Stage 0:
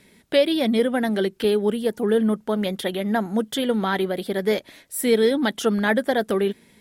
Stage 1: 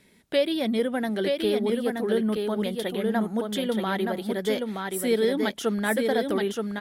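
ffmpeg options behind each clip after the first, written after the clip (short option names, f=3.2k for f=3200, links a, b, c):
-af "aecho=1:1:924:0.631,volume=-5dB"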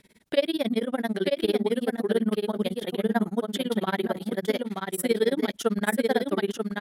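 -af "tremolo=f=18:d=1,volume=3.5dB"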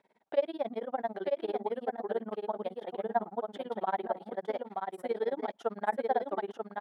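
-af "bandpass=f=790:t=q:w=3:csg=0,volume=3dB"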